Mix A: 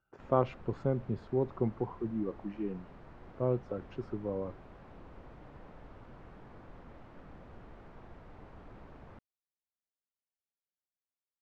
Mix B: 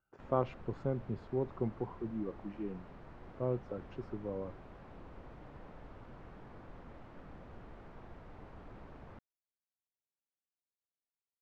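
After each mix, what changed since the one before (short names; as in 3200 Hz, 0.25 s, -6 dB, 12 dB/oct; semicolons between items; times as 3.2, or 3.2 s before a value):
speech -4.0 dB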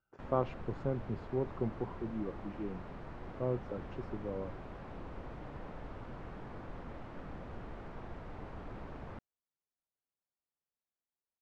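background +6.0 dB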